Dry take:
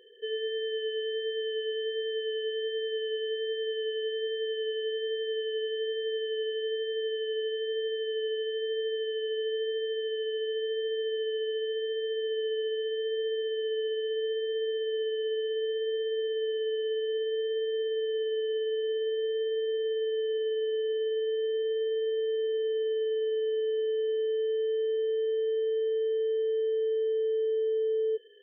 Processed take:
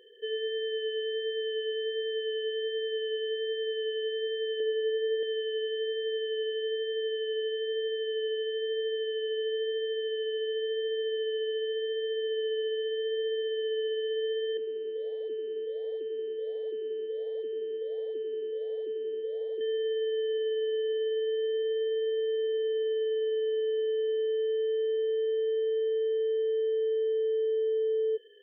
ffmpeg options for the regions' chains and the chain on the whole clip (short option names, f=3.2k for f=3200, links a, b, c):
-filter_complex "[0:a]asettb=1/sr,asplit=3[a][b][c];[a]atrim=end=4.604[d];[b]atrim=start=4.6:end=5.23,asetpts=PTS-STARTPTS,afade=t=in:d=0.004:c=qsin,afade=t=out:st=0.626:d=0.004:c=qsin,lowpass=2.9k,lowshelf=f=440:g=6.5[e];[c]atrim=start=5.226[f];[d][e]acrossfade=d=0.004:c1=hsin:c2=qsin[g];[g][f]acrossfade=d=0.004:c1=qsin:c2=hsin,asettb=1/sr,asplit=3[h][i][j];[h]atrim=end=14.574[k];[i]atrim=start=14.57:end=19.61,asetpts=PTS-STARTPTS,afade=t=in:d=0.004:c=qsin,afade=t=out:st=5.036:d=0.004:c=qsin,highshelf=f=1.5k:t=q:w=3:g=-7.5,flanger=delay=1:depth=9.5:regen=-87:speed=1.4:shape=triangular[l];[j]atrim=start=19.606[m];[k][l]acrossfade=d=0.004:c1=hsin:c2=qsin[n];[n][m]acrossfade=d=0.004:c1=qsin:c2=hsin"